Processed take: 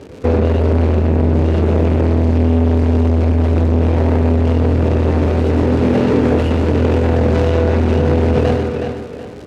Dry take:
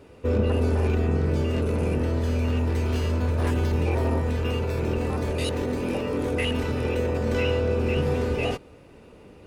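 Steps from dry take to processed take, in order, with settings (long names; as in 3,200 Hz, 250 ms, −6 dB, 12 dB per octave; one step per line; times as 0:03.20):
running median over 41 samples
high-pass filter 47 Hz 12 dB per octave
low-shelf EQ 67 Hz −6 dB
single-tap delay 122 ms −9 dB
surface crackle 230 per second −44 dBFS
high-frequency loss of the air 60 metres
on a send: tape delay 369 ms, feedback 33%, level −7.5 dB, low-pass 5,800 Hz
on the sum: boost into a limiter +17 dB
saturating transformer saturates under 230 Hz
level −1.5 dB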